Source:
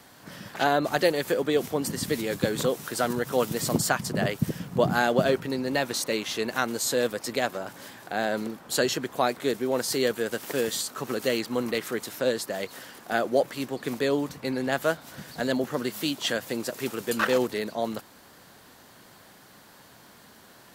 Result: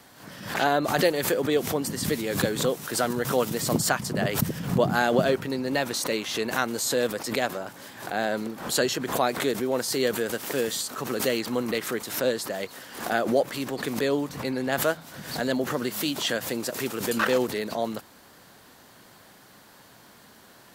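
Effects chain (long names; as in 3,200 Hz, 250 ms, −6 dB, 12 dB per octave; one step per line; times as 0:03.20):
hum removal 82.35 Hz, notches 2
background raised ahead of every attack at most 88 dB per second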